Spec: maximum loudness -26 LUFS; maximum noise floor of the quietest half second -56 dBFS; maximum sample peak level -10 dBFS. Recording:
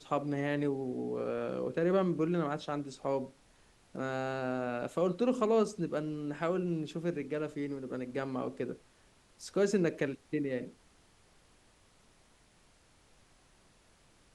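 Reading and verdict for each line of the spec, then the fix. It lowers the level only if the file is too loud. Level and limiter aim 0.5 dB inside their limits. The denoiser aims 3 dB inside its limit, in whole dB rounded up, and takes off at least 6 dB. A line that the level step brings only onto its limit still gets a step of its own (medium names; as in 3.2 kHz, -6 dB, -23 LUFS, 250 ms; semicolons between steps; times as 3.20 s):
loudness -34.0 LUFS: pass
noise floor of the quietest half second -65 dBFS: pass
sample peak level -16.5 dBFS: pass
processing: none needed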